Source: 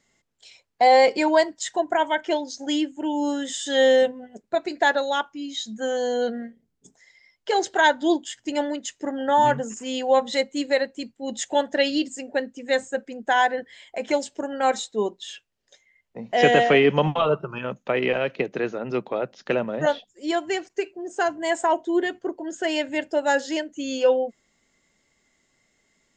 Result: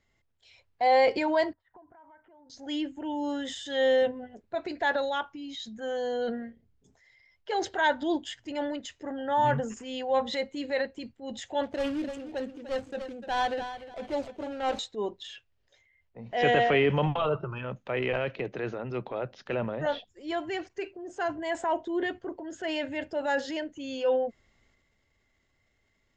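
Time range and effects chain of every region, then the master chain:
1.53–2.5 bell 580 Hz -9 dB 2.6 oct + compressor, threshold -40 dBFS + ladder low-pass 1400 Hz, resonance 40%
11.63–14.79 median filter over 25 samples + high shelf 5700 Hz +10.5 dB + feedback echo 0.297 s, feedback 24%, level -14 dB
whole clip: LPF 4100 Hz 12 dB/oct; resonant low shelf 130 Hz +9.5 dB, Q 1.5; transient shaper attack -4 dB, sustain +6 dB; gain -5.5 dB

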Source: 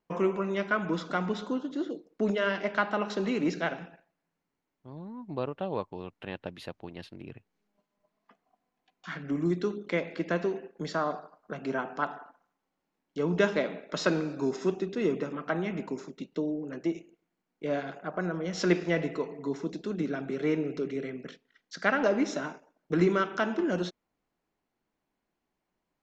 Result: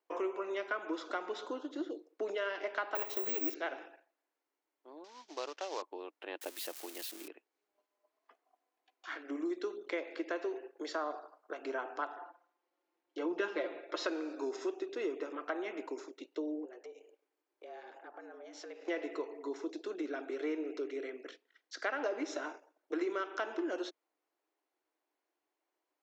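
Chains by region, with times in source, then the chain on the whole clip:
2.95–3.55 minimum comb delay 0.31 ms + careless resampling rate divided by 2×, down filtered, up zero stuff
5.04–5.82 CVSD 32 kbps + tilt +3.5 dB/oct
6.41–7.28 switching spikes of -30.5 dBFS + bell 220 Hz +7.5 dB 0.36 oct
12.17–14.06 LPF 5200 Hz + low shelf 260 Hz +7 dB + comb 5.7 ms, depth 68%
16.65–18.88 compressor 3:1, threshold -48 dBFS + frequency shift +110 Hz
whole clip: elliptic high-pass 310 Hz, stop band 50 dB; compressor 2.5:1, threshold -32 dBFS; gain -2.5 dB

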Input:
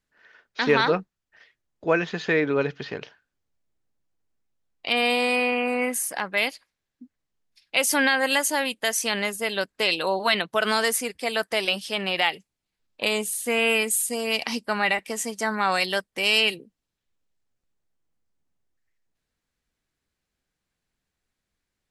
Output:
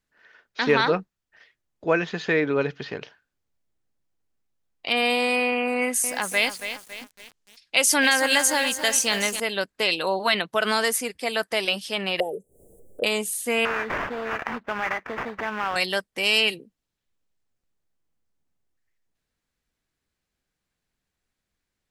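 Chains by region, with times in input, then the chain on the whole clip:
5.76–9.4 LPF 8100 Hz + high shelf 5300 Hz +11.5 dB + lo-fi delay 0.277 s, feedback 55%, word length 6-bit, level -9 dB
12.2–13.04 elliptic band-stop 500–8600 Hz + band shelf 630 Hz +13.5 dB + upward compressor, threshold -27 dBFS
13.65–15.76 compressor 2:1, threshold -34 dBFS + sample-rate reducer 4100 Hz, jitter 20% + EQ curve 200 Hz 0 dB, 1700 Hz +8 dB, 9600 Hz -19 dB
whole clip: dry

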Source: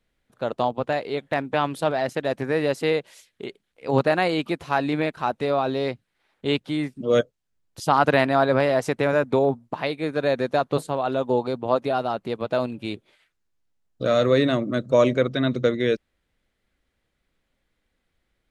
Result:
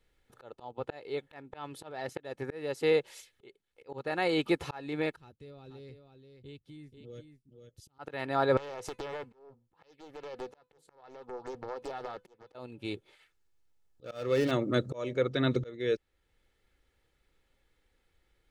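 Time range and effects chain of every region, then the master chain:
5.16–7.99 passive tone stack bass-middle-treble 10-0-1 + compressor 2.5:1, threshold -45 dBFS + echo 0.484 s -7.5 dB
8.57–12.55 compressor 16:1, threshold -27 dBFS + resonator 500 Hz, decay 0.2 s + Doppler distortion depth 0.96 ms
14.04–14.51 median filter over 15 samples + bell 2700 Hz +6.5 dB 0.98 oct
whole clip: auto swell 0.776 s; comb 2.3 ms, depth 45%

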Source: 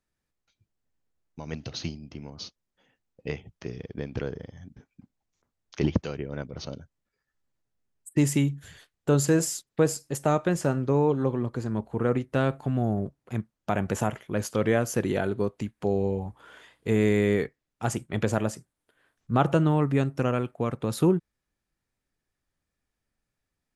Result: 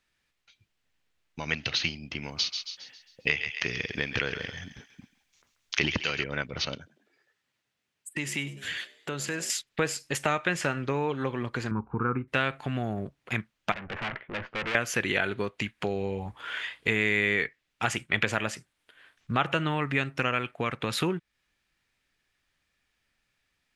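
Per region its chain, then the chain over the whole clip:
2.23–6.24 high shelf 4200 Hz +8.5 dB + thinning echo 0.135 s, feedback 47%, high-pass 1200 Hz, level -8.5 dB
6.76–9.5 HPF 110 Hz + compressor 2:1, threshold -44 dBFS + frequency-shifting echo 0.1 s, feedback 58%, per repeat +64 Hz, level -18.5 dB
11.71–12.28 LPF 1400 Hz 24 dB/oct + comb 0.8 ms, depth 95%
13.72–14.75 Bessel low-pass 1300 Hz, order 4 + tube stage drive 37 dB, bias 0.65
whole clip: bell 2700 Hz +14.5 dB 2.3 oct; compressor 2.5:1, threshold -31 dBFS; dynamic EQ 2000 Hz, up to +7 dB, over -46 dBFS, Q 0.89; gain +1 dB

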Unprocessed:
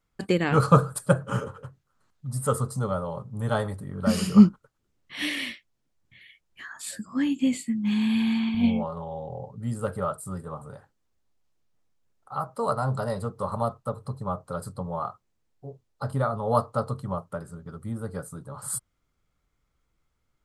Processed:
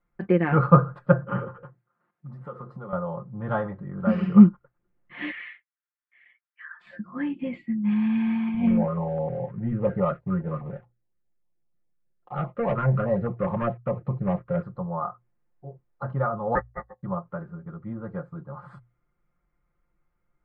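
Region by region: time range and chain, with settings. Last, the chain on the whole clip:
1.64–2.93 HPF 170 Hz + compressor 5:1, threshold -34 dBFS
5.31–6.81 ladder high-pass 1200 Hz, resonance 35% + sample leveller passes 1 + air absorption 66 m
8.67–14.63 LPF 2500 Hz + sample leveller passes 2 + stepped notch 9.8 Hz 750–1600 Hz
16.55–17.03 ring modulator 650 Hz + upward expander 2.5:1, over -44 dBFS
whole clip: LPF 2100 Hz 24 dB/oct; notches 60/120 Hz; comb 5.7 ms; gain -1 dB

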